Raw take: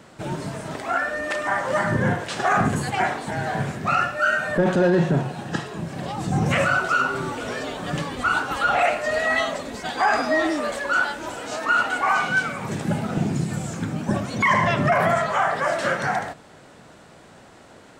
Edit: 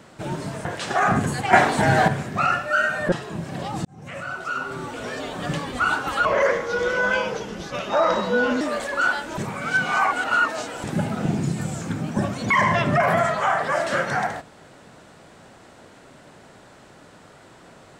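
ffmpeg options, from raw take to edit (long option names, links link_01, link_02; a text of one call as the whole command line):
ffmpeg -i in.wav -filter_complex "[0:a]asplit=10[link_01][link_02][link_03][link_04][link_05][link_06][link_07][link_08][link_09][link_10];[link_01]atrim=end=0.652[link_11];[link_02]atrim=start=2.138:end=3.022[link_12];[link_03]atrim=start=3.018:end=3.572,asetpts=PTS-STARTPTS,volume=9dB[link_13];[link_04]atrim=start=3.568:end=4.612[link_14];[link_05]atrim=start=5.558:end=6.29,asetpts=PTS-STARTPTS,afade=type=out:start_time=0.728:duration=0.004:curve=hsin[link_15];[link_06]atrim=start=6.29:end=8.694,asetpts=PTS-STARTPTS,afade=type=in:duration=1.54[link_16];[link_07]atrim=start=8.69:end=10.53,asetpts=PTS-STARTPTS,asetrate=34398,aresample=44100[link_17];[link_08]atrim=start=10.526:end=11.302[link_18];[link_09]atrim=start=11.298:end=12.762,asetpts=PTS-STARTPTS,areverse[link_19];[link_10]atrim=start=12.758[link_20];[link_11][link_12]acrossfade=duration=0.004:curve1=hsin:curve2=hsin[link_21];[link_21][link_13]acrossfade=duration=0.004:curve1=hsin:curve2=hsin[link_22];[link_22][link_14]acrossfade=duration=0.004:curve1=hsin:curve2=hsin[link_23];[link_15][link_16]concat=n=2:v=0:a=1[link_24];[link_23][link_24]acrossfade=duration=0.004:curve1=hsin:curve2=hsin[link_25];[link_25][link_17]acrossfade=duration=0.004:curve1=hsin:curve2=hsin[link_26];[link_26][link_18]acrossfade=duration=0.004:curve1=hsin:curve2=hsin[link_27];[link_27][link_19]acrossfade=duration=0.004:curve1=hsin:curve2=hsin[link_28];[link_28][link_20]acrossfade=duration=0.004:curve1=hsin:curve2=hsin" out.wav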